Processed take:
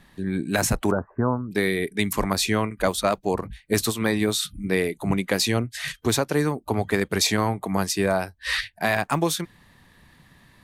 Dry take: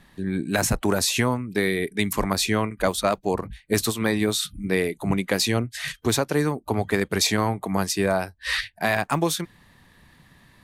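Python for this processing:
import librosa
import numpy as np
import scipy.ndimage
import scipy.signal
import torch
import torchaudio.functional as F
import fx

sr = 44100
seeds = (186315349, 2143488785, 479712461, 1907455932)

y = fx.steep_lowpass(x, sr, hz=1500.0, slope=72, at=(0.91, 1.51))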